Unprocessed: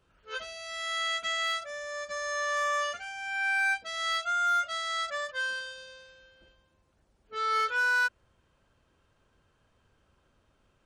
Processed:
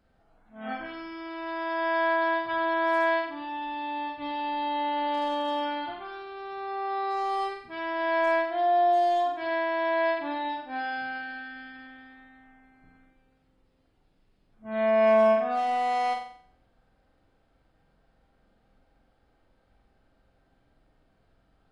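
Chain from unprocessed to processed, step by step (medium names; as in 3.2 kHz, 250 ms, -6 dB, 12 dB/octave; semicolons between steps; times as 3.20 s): speed mistake 15 ips tape played at 7.5 ips; flutter echo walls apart 7.8 m, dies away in 0.57 s; trim +1 dB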